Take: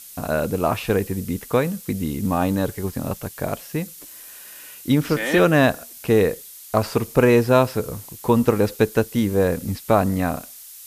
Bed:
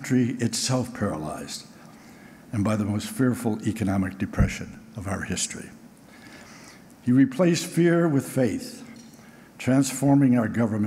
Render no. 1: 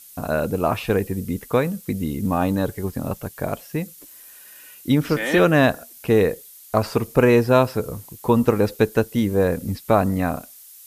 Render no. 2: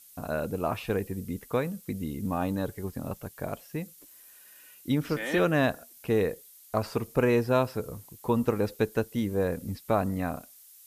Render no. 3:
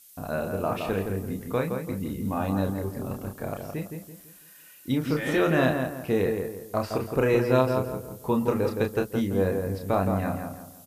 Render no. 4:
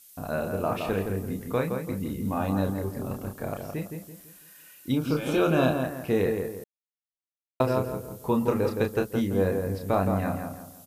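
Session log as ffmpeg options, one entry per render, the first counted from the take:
-af "afftdn=nr=6:nf=-42"
-af "volume=-8.5dB"
-filter_complex "[0:a]asplit=2[a][b];[b]adelay=31,volume=-5dB[c];[a][c]amix=inputs=2:normalize=0,asplit=2[d][e];[e]adelay=167,lowpass=f=2k:p=1,volume=-5dB,asplit=2[f][g];[g]adelay=167,lowpass=f=2k:p=1,volume=0.37,asplit=2[h][i];[i]adelay=167,lowpass=f=2k:p=1,volume=0.37,asplit=2[j][k];[k]adelay=167,lowpass=f=2k:p=1,volume=0.37,asplit=2[l][m];[m]adelay=167,lowpass=f=2k:p=1,volume=0.37[n];[d][f][h][j][l][n]amix=inputs=6:normalize=0"
-filter_complex "[0:a]asettb=1/sr,asplit=3[a][b][c];[a]atrim=end=4.924[d];[b]atrim=start=4.92:end=5.84,asetpts=PTS-STARTPTS,afade=t=in:d=0.004:c=qsin,afade=t=out:st=0.916:d=0.004:c=qsin,asuperstop=centerf=1900:order=4:qfactor=3.2[e];[c]atrim=start=5.836[f];[d][e]acrossfade=d=0.004:c1=hsin:c2=qsin[g];[g][f]acrossfade=d=0.004:c1=qsin:c2=hsin,asplit=3[h][i][j];[h]atrim=end=6.64,asetpts=PTS-STARTPTS,afade=t=out:st=6.636:d=0.004:c=hsin[k];[i]atrim=start=6.64:end=7.6,asetpts=PTS-STARTPTS,volume=0[l];[j]atrim=start=7.6,asetpts=PTS-STARTPTS,afade=t=in:d=0.004:c=hsin[m];[k][l][m]concat=n=3:v=0:a=1"

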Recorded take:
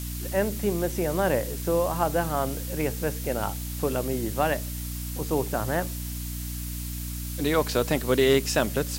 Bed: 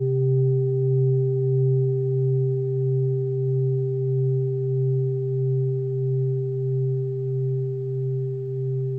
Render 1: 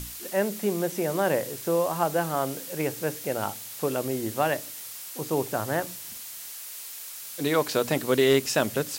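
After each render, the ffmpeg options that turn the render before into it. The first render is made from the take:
-af "bandreject=f=60:t=h:w=6,bandreject=f=120:t=h:w=6,bandreject=f=180:t=h:w=6,bandreject=f=240:t=h:w=6,bandreject=f=300:t=h:w=6"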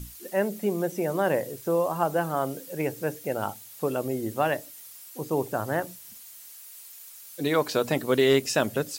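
-af "afftdn=nr=10:nf=-40"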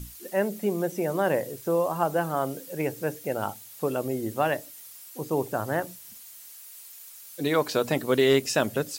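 -af anull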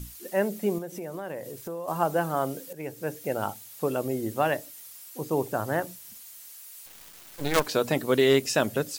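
-filter_complex "[0:a]asettb=1/sr,asplit=3[a][b][c];[a]atrim=end=0.784[d];[b]atrim=start=0.78:end=1.88,asetpts=PTS-STARTPTS,afade=t=in:d=0.004:c=qsin,afade=t=out:st=1.096:d=0.004:c=qsin,acompressor=threshold=-35dB:ratio=3:attack=3.2:release=140:knee=1:detection=peak[e];[c]atrim=start=1.876[f];[d][e]acrossfade=d=0.004:c1=hsin:c2=qsin[g];[g][f]acrossfade=d=0.004:c1=qsin:c2=hsin,asettb=1/sr,asplit=3[h][i][j];[h]atrim=end=6.864[k];[i]atrim=start=6.86:end=7.67,asetpts=PTS-STARTPTS,afade=t=in:d=0.004:c=qsin,afade=t=out:st=0.806:d=0.004:c=qsin,acrusher=bits=4:dc=4:mix=0:aa=0.000001[l];[j]atrim=start=7.666[m];[k][l]acrossfade=d=0.004:c1=hsin:c2=qsin[n];[n][m]acrossfade=d=0.004:c1=qsin:c2=hsin,asplit=2[o][p];[o]atrim=end=2.73,asetpts=PTS-STARTPTS,afade=t=out:st=2.726:d=0.004:c=hsin:silence=0.237137[q];[p]atrim=start=2.73,asetpts=PTS-STARTPTS,afade=t=in:d=0.52:silence=0.237137[r];[q][r]concat=n=2:v=0:a=1"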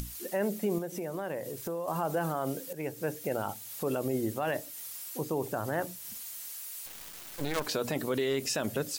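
-af "alimiter=limit=-21dB:level=0:latency=1:release=33,acompressor=mode=upward:threshold=-35dB:ratio=2.5"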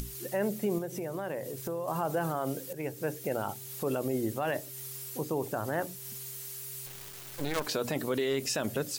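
-filter_complex "[1:a]volume=-30dB[a];[0:a][a]amix=inputs=2:normalize=0"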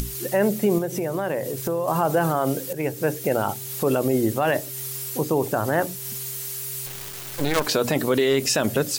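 -af "volume=10dB"

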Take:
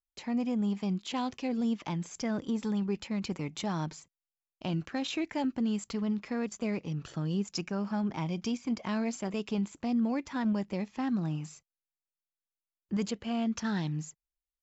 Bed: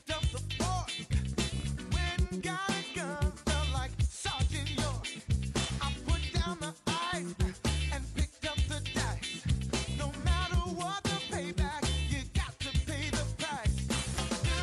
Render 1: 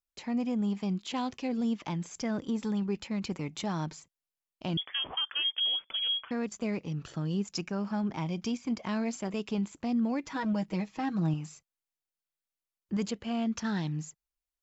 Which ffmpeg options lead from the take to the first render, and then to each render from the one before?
-filter_complex "[0:a]asettb=1/sr,asplit=3[a][b][c];[a]atrim=end=4.774[d];[b]atrim=start=4.77:end=6.31,asetpts=PTS-STARTPTS,afade=t=in:d=0.004:c=qsin,afade=t=out:st=1.536:d=0.004:c=qsin,lowpass=f=3k:t=q:w=0.5098,lowpass=f=3k:t=q:w=0.6013,lowpass=f=3k:t=q:w=0.9,lowpass=f=3k:t=q:w=2.563,afreqshift=-3500[e];[c]atrim=start=6.306[f];[d][e]acrossfade=d=0.004:c1=hsin:c2=qsin[g];[g][f]acrossfade=d=0.004:c1=qsin:c2=hsin,asettb=1/sr,asplit=3[h][i][j];[h]atrim=end=10.234[k];[i]atrim=start=10.23:end=11.34,asetpts=PTS-STARTPTS,afade=t=in:d=0.004:c=qsin,afade=t=out:st=1.106:d=0.004:c=qsin,aecho=1:1:6.3:0.74,atrim=end_sample=48951[l];[j]atrim=start=11.336[m];[k][l]acrossfade=d=0.004:c1=hsin:c2=qsin[n];[n][m]acrossfade=d=0.004:c1=qsin:c2=hsin"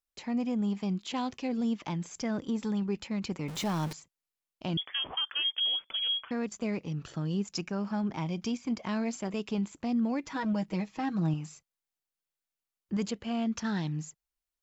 -filter_complex "[0:a]asettb=1/sr,asplit=3[a][b][c];[a]atrim=end=3.484[d];[b]atrim=start=3.48:end=3.93,asetpts=PTS-STARTPTS,afade=t=in:d=0.004:c=qsin,afade=t=out:st=0.446:d=0.004:c=qsin,aeval=exprs='val(0)+0.5*0.0158*sgn(val(0))':c=same[e];[c]atrim=start=3.926[f];[d][e]acrossfade=d=0.004:c1=hsin:c2=qsin[g];[g][f]acrossfade=d=0.004:c1=qsin:c2=hsin"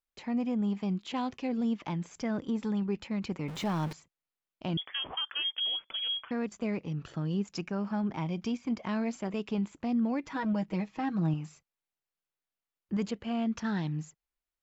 -af "bass=f=250:g=0,treble=f=4k:g=-8"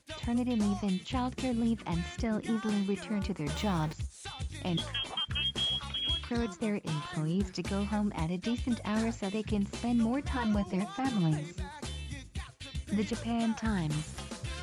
-filter_complex "[1:a]volume=-8dB[a];[0:a][a]amix=inputs=2:normalize=0"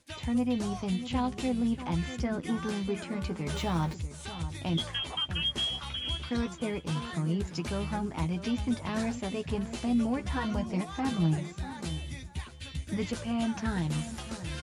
-filter_complex "[0:a]asplit=2[a][b];[b]adelay=12,volume=-7dB[c];[a][c]amix=inputs=2:normalize=0,asplit=2[d][e];[e]adelay=641.4,volume=-12dB,highshelf=f=4k:g=-14.4[f];[d][f]amix=inputs=2:normalize=0"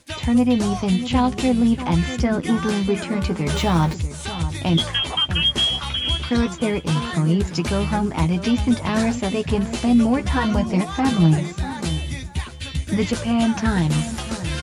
-af "volume=11.5dB"

